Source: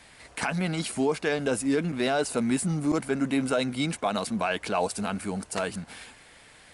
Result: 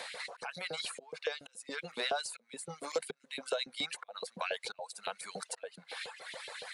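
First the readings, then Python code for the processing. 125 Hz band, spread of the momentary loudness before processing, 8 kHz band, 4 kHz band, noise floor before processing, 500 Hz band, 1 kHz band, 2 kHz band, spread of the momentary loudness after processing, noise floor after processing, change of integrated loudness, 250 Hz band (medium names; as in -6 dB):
-25.0 dB, 7 LU, -9.0 dB, -2.5 dB, -53 dBFS, -11.5 dB, -11.0 dB, -7.5 dB, 9 LU, -71 dBFS, -11.5 dB, -25.5 dB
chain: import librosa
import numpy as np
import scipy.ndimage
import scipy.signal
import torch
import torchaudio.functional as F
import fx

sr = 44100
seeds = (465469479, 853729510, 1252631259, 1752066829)

y = fx.auto_swell(x, sr, attack_ms=756.0)
y = fx.filter_lfo_highpass(y, sr, shape='saw_up', hz=7.1, low_hz=410.0, high_hz=3300.0, q=1.6)
y = fx.graphic_eq_31(y, sr, hz=(160, 315, 500, 4000), db=(9, -9, 10, 9))
y = fx.dereverb_blind(y, sr, rt60_s=1.2)
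y = fx.band_squash(y, sr, depth_pct=70)
y = y * librosa.db_to_amplitude(-4.0)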